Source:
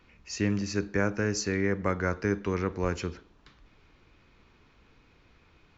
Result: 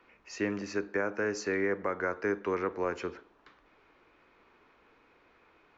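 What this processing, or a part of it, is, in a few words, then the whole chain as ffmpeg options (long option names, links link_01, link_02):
DJ mixer with the lows and highs turned down: -filter_complex "[0:a]acrossover=split=300 2300:gain=0.112 1 0.251[link_01][link_02][link_03];[link_01][link_02][link_03]amix=inputs=3:normalize=0,alimiter=limit=-23dB:level=0:latency=1:release=227,volume=3dB"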